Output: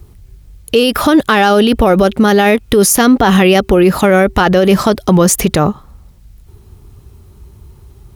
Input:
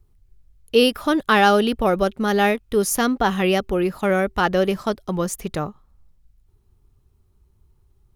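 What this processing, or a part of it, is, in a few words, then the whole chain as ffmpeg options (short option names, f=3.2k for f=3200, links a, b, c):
mastering chain: -af "highpass=46,equalizer=f=1.2k:t=o:w=0.77:g=-1.5,acompressor=threshold=-23dB:ratio=2,asoftclip=type=hard:threshold=-13dB,alimiter=level_in=24dB:limit=-1dB:release=50:level=0:latency=1,volume=-1dB"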